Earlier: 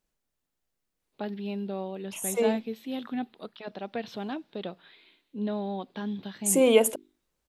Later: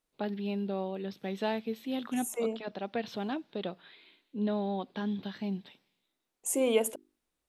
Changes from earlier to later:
first voice: entry -1.00 s; second voice -7.0 dB

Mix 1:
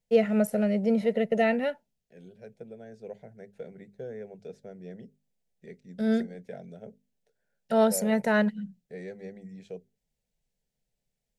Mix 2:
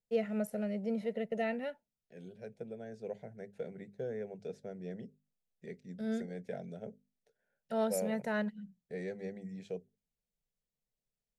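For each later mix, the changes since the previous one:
first voice -10.5 dB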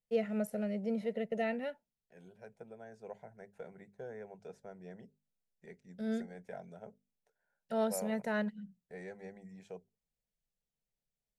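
second voice: add ten-band EQ 125 Hz -7 dB, 250 Hz -7 dB, 500 Hz -7 dB, 1000 Hz +10 dB, 2000 Hz -3 dB, 4000 Hz -8 dB

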